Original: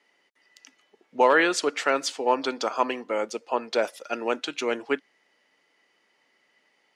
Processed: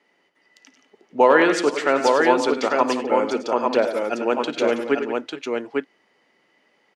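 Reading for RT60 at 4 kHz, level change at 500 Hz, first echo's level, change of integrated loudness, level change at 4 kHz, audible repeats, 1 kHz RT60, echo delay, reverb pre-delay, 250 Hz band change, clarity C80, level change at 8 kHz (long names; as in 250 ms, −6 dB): no reverb audible, +7.0 dB, −19.0 dB, +5.0 dB, +1.5 dB, 5, no reverb audible, 55 ms, no reverb audible, +8.5 dB, no reverb audible, −0.5 dB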